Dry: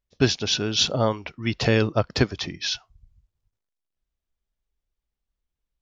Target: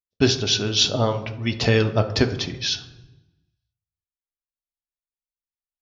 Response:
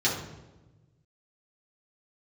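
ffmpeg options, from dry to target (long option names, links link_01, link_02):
-filter_complex "[0:a]agate=range=-28dB:threshold=-49dB:ratio=16:detection=peak,asplit=2[link_01][link_02];[link_02]equalizer=frequency=180:width=0.56:gain=-4.5[link_03];[1:a]atrim=start_sample=2205[link_04];[link_03][link_04]afir=irnorm=-1:irlink=0,volume=-16.5dB[link_05];[link_01][link_05]amix=inputs=2:normalize=0"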